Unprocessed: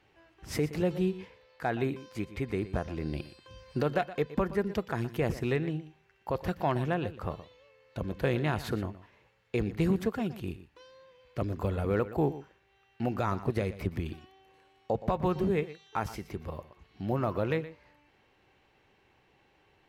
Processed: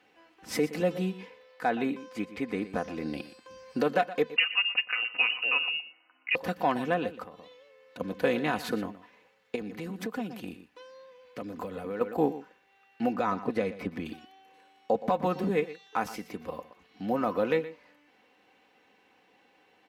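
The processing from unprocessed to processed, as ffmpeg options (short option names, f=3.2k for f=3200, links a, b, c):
-filter_complex "[0:a]asettb=1/sr,asplit=3[a][b][c];[a]atrim=end=1.694[d];[b]atrim=start=1.69:end=2.63,asetpts=PTS-STARTPTS,afade=t=in:d=0.004:c=qsin,afade=t=out:st=0.936:d=0.004:c=qsin,highshelf=f=8k:g=-7[e];[c]atrim=start=2.626[f];[d][e]acrossfade=d=0.004:c1=hsin:c2=qsin[g];[g][f]acrossfade=d=0.004:c1=qsin:c2=hsin,asettb=1/sr,asplit=3[h][i][j];[h]atrim=end=4.364[k];[i]atrim=start=4.36:end=6.35,asetpts=PTS-STARTPTS,afade=t=in:d=0.004:c=qsin,afade=t=out:st=1.986:d=0.004:c=qsin,lowpass=f=2.6k:t=q:w=0.5098,lowpass=f=2.6k:t=q:w=0.6013,lowpass=f=2.6k:t=q:w=0.9,lowpass=f=2.6k:t=q:w=2.563,afreqshift=-3000[l];[j]atrim=start=6.346[m];[k][l]acrossfade=d=0.004:c1=hsin:c2=qsin[n];[n][m]acrossfade=d=0.004:c1=qsin:c2=hsin,asettb=1/sr,asplit=3[o][p][q];[o]atrim=end=7.234[r];[p]atrim=start=7.23:end=8,asetpts=PTS-STARTPTS,afade=t=in:d=0.004:c=qsin,afade=t=out:st=0.766:d=0.004:c=qsin,acompressor=threshold=-43dB:ratio=5:attack=3.2:release=140:knee=1:detection=peak[s];[q]atrim=start=7.996[t];[r][s]acrossfade=d=0.004:c1=hsin:c2=qsin[u];[u][t]acrossfade=d=0.004:c1=qsin:c2=hsin,asettb=1/sr,asplit=3[v][w][x];[v]atrim=end=9.554[y];[w]atrim=start=9.55:end=12.01,asetpts=PTS-STARTPTS,afade=t=in:d=0.004:c=qsin,afade=t=out:st=2.456:d=0.004:c=qsin,acompressor=threshold=-32dB:ratio=12:attack=3.2:release=140:knee=1:detection=peak[z];[x]atrim=start=12.006[aa];[y][z]acrossfade=d=0.004:c1=hsin:c2=qsin[ab];[ab][aa]acrossfade=d=0.004:c1=qsin:c2=hsin,asettb=1/sr,asplit=3[ac][ad][ae];[ac]atrim=end=13.124[af];[ad]atrim=start=13.12:end=14.05,asetpts=PTS-STARTPTS,afade=t=in:d=0.004:c=qsin,afade=t=out:st=0.926:d=0.004:c=qsin,lowpass=f=3.6k:p=1[ag];[ae]atrim=start=14.046[ah];[af][ag]acrossfade=d=0.004:c1=hsin:c2=qsin[ai];[ai][ah]acrossfade=d=0.004:c1=qsin:c2=hsin,highpass=200,aecho=1:1:4:0.59,volume=2dB"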